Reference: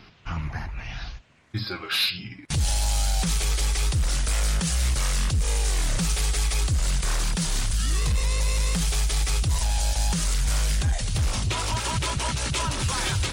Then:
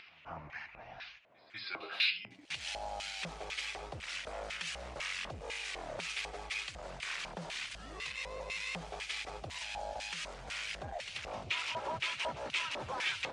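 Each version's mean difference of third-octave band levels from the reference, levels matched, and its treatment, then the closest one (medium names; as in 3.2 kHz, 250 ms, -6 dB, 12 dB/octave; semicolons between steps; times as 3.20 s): 9.5 dB: LFO band-pass square 2 Hz 650–2400 Hz; low-pass 8.9 kHz 12 dB/octave; upward compressor, threshold -53 dBFS; pre-echo 196 ms -24 dB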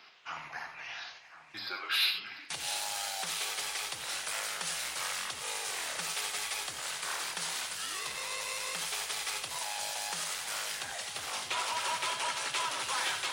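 7.0 dB: high-pass 710 Hz 12 dB/octave; dynamic bell 7 kHz, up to -6 dB, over -43 dBFS, Q 0.78; echo whose repeats swap between lows and highs 347 ms, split 2.1 kHz, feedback 89%, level -12.5 dB; gated-style reverb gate 110 ms rising, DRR 7.5 dB; trim -3 dB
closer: second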